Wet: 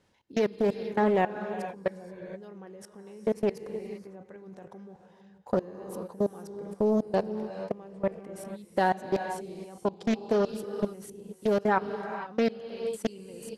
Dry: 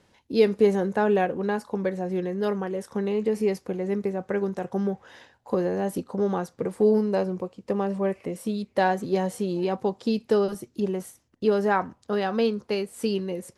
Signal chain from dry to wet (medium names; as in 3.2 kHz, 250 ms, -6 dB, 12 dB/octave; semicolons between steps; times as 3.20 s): level held to a coarse grid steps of 23 dB; gated-style reverb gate 500 ms rising, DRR 8.5 dB; loudspeaker Doppler distortion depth 0.43 ms